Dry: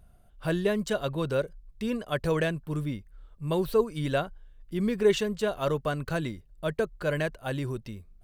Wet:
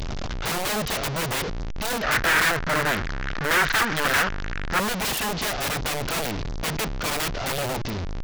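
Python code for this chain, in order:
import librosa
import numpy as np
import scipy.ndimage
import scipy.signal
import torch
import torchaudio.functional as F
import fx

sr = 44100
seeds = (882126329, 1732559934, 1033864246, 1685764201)

y = fx.delta_mod(x, sr, bps=32000, step_db=-28.0)
y = (np.mod(10.0 ** (26.0 / 20.0) * y + 1.0, 2.0) - 1.0) / 10.0 ** (26.0 / 20.0)
y = fx.peak_eq(y, sr, hz=1600.0, db=13.5, octaves=1.1, at=(2.03, 4.8))
y = F.gain(torch.from_numpy(y), 5.5).numpy()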